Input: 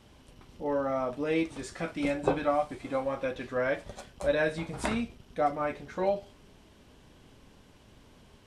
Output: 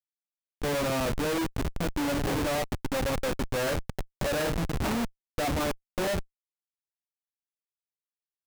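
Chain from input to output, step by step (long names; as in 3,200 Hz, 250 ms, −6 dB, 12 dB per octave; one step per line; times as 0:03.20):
comparator with hysteresis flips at −33.5 dBFS
level +5 dB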